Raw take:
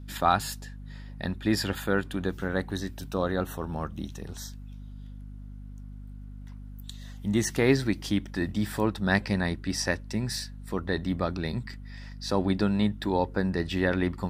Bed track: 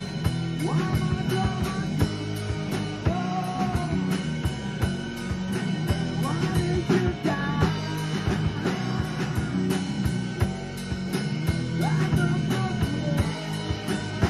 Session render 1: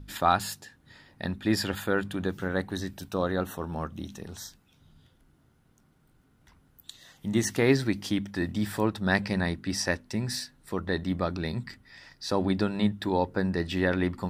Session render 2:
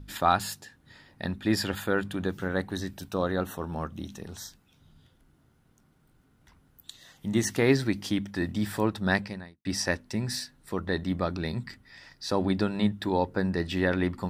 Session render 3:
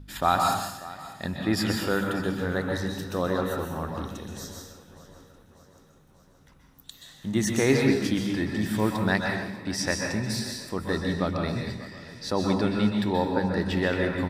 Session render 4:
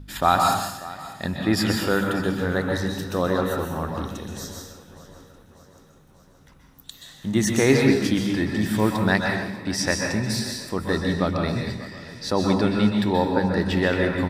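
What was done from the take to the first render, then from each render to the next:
de-hum 50 Hz, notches 5
9.12–9.65 fade out quadratic
feedback echo 0.593 s, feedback 57%, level -18 dB; plate-style reverb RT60 0.84 s, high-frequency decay 0.85×, pre-delay 0.115 s, DRR 1 dB
gain +4 dB

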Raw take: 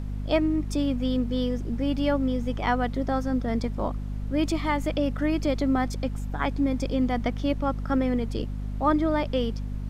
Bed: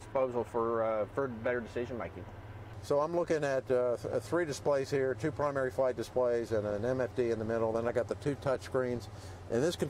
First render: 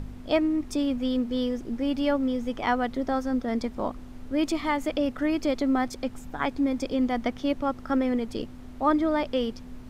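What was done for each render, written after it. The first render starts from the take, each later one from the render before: de-hum 50 Hz, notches 4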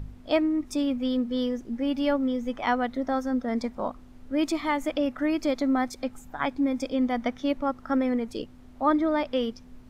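noise print and reduce 7 dB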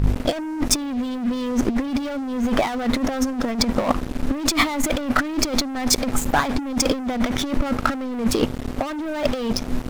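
sample leveller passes 5; negative-ratio compressor -20 dBFS, ratio -0.5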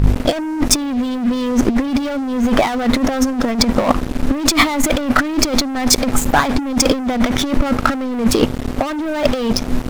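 gain +6 dB; limiter -2 dBFS, peak gain reduction 1.5 dB

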